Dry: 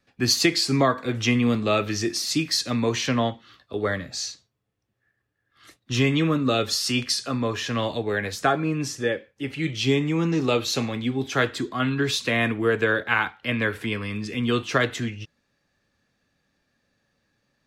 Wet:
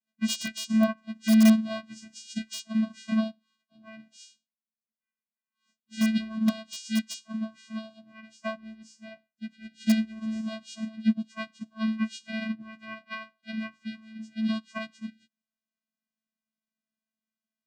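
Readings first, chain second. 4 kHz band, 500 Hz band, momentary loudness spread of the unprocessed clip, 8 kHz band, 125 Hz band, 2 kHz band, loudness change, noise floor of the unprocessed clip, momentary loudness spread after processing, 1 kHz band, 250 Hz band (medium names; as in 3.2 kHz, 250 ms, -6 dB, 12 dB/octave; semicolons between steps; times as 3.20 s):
-12.0 dB, -15.0 dB, 8 LU, -10.5 dB, under -10 dB, -13.0 dB, -5.0 dB, -75 dBFS, 18 LU, -14.0 dB, -0.5 dB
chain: partials quantised in pitch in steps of 2 st; vocoder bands 8, square 220 Hz; treble shelf 4.1 kHz +8 dB; in parallel at -7.5 dB: integer overflow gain 10.5 dB; on the sum: upward expansion 2.5:1, over -26 dBFS; trim -3.5 dB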